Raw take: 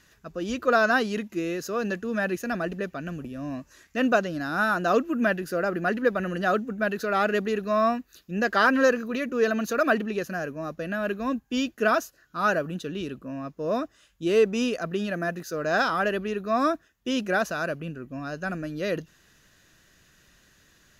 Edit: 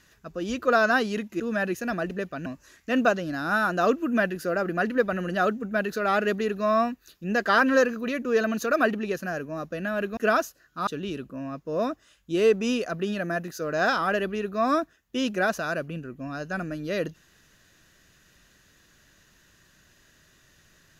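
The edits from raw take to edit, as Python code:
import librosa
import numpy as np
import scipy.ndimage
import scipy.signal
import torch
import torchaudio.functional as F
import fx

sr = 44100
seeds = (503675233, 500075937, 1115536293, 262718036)

y = fx.edit(x, sr, fx.cut(start_s=1.4, length_s=0.62),
    fx.cut(start_s=3.08, length_s=0.45),
    fx.cut(start_s=11.24, length_s=0.51),
    fx.cut(start_s=12.45, length_s=0.34), tone=tone)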